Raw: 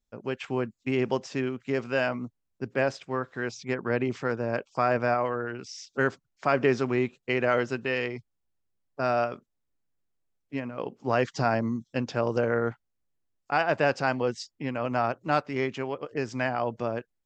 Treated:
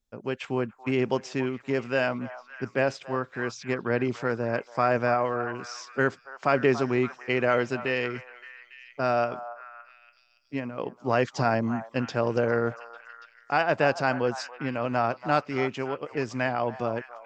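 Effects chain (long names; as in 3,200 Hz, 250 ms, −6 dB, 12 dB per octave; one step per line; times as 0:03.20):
echo through a band-pass that steps 283 ms, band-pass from 950 Hz, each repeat 0.7 octaves, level −10 dB
level +1 dB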